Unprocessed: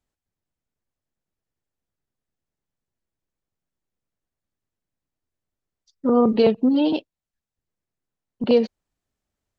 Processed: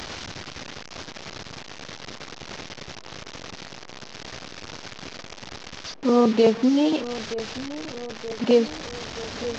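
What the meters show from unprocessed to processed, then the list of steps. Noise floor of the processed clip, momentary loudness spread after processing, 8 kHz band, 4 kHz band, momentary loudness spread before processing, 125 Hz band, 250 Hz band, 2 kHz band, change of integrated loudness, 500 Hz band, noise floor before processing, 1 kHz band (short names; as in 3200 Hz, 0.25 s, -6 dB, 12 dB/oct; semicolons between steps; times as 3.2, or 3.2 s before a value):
-42 dBFS, 19 LU, n/a, +6.5 dB, 12 LU, +2.0 dB, -1.0 dB, +9.0 dB, -4.0 dB, 0.0 dB, under -85 dBFS, +1.5 dB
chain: delta modulation 32 kbps, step -27 dBFS; low shelf 76 Hz -11.5 dB; narrowing echo 0.925 s, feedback 71%, band-pass 510 Hz, level -13 dB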